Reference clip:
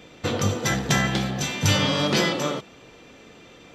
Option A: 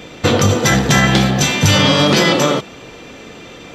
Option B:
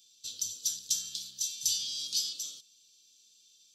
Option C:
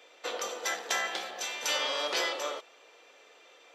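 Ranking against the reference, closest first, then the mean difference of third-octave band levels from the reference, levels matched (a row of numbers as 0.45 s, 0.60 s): A, C, B; 1.5 dB, 8.5 dB, 20.5 dB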